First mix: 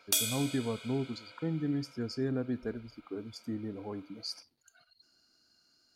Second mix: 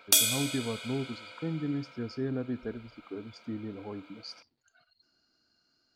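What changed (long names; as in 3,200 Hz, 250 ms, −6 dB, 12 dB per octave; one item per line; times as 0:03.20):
speech: add high-frequency loss of the air 120 metres
background +6.5 dB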